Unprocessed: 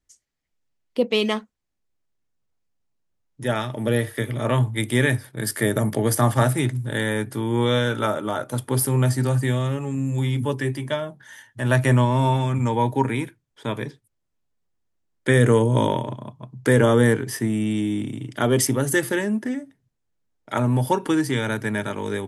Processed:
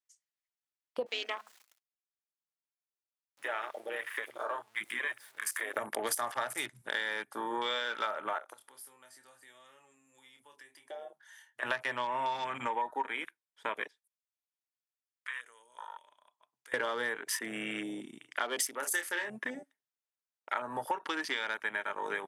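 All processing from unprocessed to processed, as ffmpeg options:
ffmpeg -i in.wav -filter_complex "[0:a]asettb=1/sr,asplit=3[link_01][link_02][link_03];[link_01]atrim=end=1.064[link_04];[link_02]atrim=start=1.06:end=5.77,asetpts=PTS-STARTPTS,afade=type=in:duration=0.004:curve=qsin,afade=type=out:start_time=4.706:duration=0.004:curve=qsin,aeval=exprs='val(0)+0.5*0.0188*sgn(val(0))':channel_layout=same,acompressor=threshold=-24dB:ratio=2.5:attack=3.2:release=140:knee=1:detection=peak,flanger=delay=0.6:depth=5:regen=-64:speed=1:shape=triangular[link_05];[link_03]atrim=start=5.766[link_06];[link_04][link_05]acrossfade=duration=0.004:curve1=hsin:curve2=qsin[link_07];[link_07][link_06]acrossfade=duration=0.004:curve1=qsin:curve2=hsin,asettb=1/sr,asplit=3[link_08][link_09][link_10];[link_08]atrim=end=8.384[link_11];[link_09]atrim=start=8.38:end=11.63,asetpts=PTS-STARTPTS,afade=type=in:duration=0.004:curve=qsin,afade=type=out:start_time=3.246:duration=0.004:curve=qsin,asplit=2[link_12][link_13];[link_13]adelay=27,volume=-7dB[link_14];[link_12][link_14]amix=inputs=2:normalize=0,atrim=end_sample=143325,acompressor=threshold=-38dB:ratio=3:attack=3.2:release=140:knee=1:detection=peak[link_15];[link_10]atrim=start=11.626[link_16];[link_11][link_15]acrossfade=duration=0.004:curve1=hsin:curve2=qsin[link_17];[link_17][link_16]acrossfade=duration=0.004:curve1=qsin:curve2=hsin,asettb=1/sr,asplit=3[link_18][link_19][link_20];[link_18]atrim=end=13.874[link_21];[link_19]atrim=start=13.87:end=16.74,asetpts=PTS-STARTPTS,afade=type=in:duration=0.004:curve=qsin,afade=type=out:start_time=2.866:duration=0.004:curve=qsin,highpass=frequency=1200:poles=1,acompressor=threshold=-46dB:ratio=2.5:attack=3.2:release=140:knee=1:detection=peak[link_22];[link_20]atrim=start=16.736[link_23];[link_21][link_22]acrossfade=duration=0.004:curve1=hsin:curve2=qsin[link_24];[link_24][link_23]acrossfade=duration=0.004:curve1=qsin:curve2=hsin,asettb=1/sr,asplit=3[link_25][link_26][link_27];[link_25]atrim=end=18.784[link_28];[link_26]atrim=start=18.78:end=19.3,asetpts=PTS-STARTPTS,afade=type=in:duration=0.004:curve=qsin,afade=type=out:start_time=0.516:duration=0.004:curve=qsin,equalizer=frequency=170:width_type=o:width=1.1:gain=-10,asplit=2[link_29][link_30];[link_30]adelay=29,volume=-8dB[link_31];[link_29][link_31]amix=inputs=2:normalize=0,atrim=end_sample=22932[link_32];[link_27]atrim=start=19.296[link_33];[link_28][link_32]acrossfade=duration=0.004:curve1=hsin:curve2=qsin[link_34];[link_34][link_33]acrossfade=duration=0.004:curve1=qsin:curve2=hsin,highpass=910,afwtdn=0.0112,acompressor=threshold=-36dB:ratio=6,volume=5dB" out.wav

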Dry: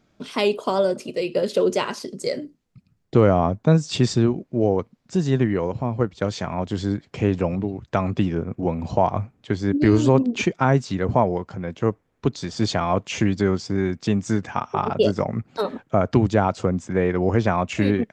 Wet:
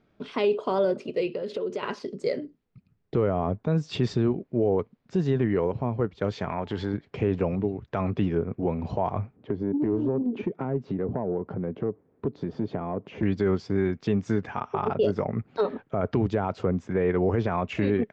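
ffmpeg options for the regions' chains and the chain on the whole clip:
ffmpeg -i in.wav -filter_complex "[0:a]asettb=1/sr,asplit=3[link_01][link_02][link_03];[link_01]atrim=end=1.274[link_04];[link_02]atrim=start=1.27:end=1.83,asetpts=PTS-STARTPTS,afade=type=in:duration=0.004:curve=qsin,afade=type=out:start_time=0.556:duration=0.004:curve=qsin,highpass=61,acompressor=threshold=-27dB:ratio=5:attack=3.2:release=140:knee=1:detection=peak[link_05];[link_03]atrim=start=1.826[link_06];[link_04][link_05]acrossfade=duration=0.004:curve1=hsin:curve2=qsin[link_07];[link_07][link_06]acrossfade=duration=0.004:curve1=qsin:curve2=hsin,asettb=1/sr,asplit=3[link_08][link_09][link_10];[link_08]atrim=end=6.494[link_11];[link_09]atrim=start=6.49:end=6.94,asetpts=PTS-STARTPTS,afade=type=in:duration=0.004:curve=qsin,afade=type=out:start_time=0.446:duration=0.004:curve=qsin,equalizer=frequency=1600:width_type=o:width=2.6:gain=7,acompressor=threshold=-25dB:ratio=2:attack=3.2:release=140:knee=1:detection=peak,aeval=exprs='val(0)+0.00251*sin(2*PI*870*n/s)':channel_layout=same[link_12];[link_10]atrim=start=6.936[link_13];[link_11][link_12]acrossfade=duration=0.004:curve1=hsin:curve2=qsin[link_14];[link_14][link_13]acrossfade=duration=0.004:curve1=qsin:curve2=hsin,asettb=1/sr,asplit=3[link_15][link_16][link_17];[link_15]atrim=end=9.364[link_18];[link_16]atrim=start=9.36:end=13.23,asetpts=PTS-STARTPTS,afade=type=in:duration=0.004:curve=qsin,afade=type=out:start_time=3.866:duration=0.004:curve=qsin,acompressor=threshold=-34dB:ratio=3:attack=3.2:release=140:knee=1:detection=peak,bandpass=frequency=270:width_type=q:width=0.72,aeval=exprs='0.158*sin(PI/2*2.24*val(0)/0.158)':channel_layout=same[link_19];[link_17]atrim=start=13.226[link_20];[link_18][link_19]acrossfade=duration=0.004:curve1=hsin:curve2=qsin[link_21];[link_21][link_20]acrossfade=duration=0.004:curve1=qsin:curve2=hsin,lowpass=3200,equalizer=frequency=420:width=6.5:gain=6.5,alimiter=limit=-12dB:level=0:latency=1:release=25,volume=-3dB" out.wav

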